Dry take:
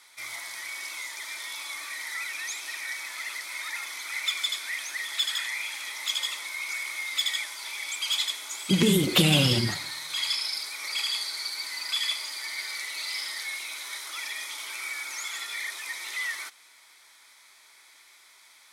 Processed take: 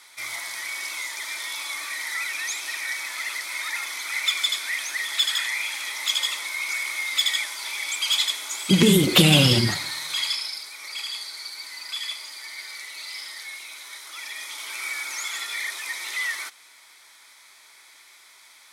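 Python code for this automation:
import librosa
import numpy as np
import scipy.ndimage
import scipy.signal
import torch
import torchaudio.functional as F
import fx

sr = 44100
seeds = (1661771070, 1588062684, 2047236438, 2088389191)

y = fx.gain(x, sr, db=fx.line((10.09, 5.0), (10.63, -3.0), (14.02, -3.0), (14.88, 4.0)))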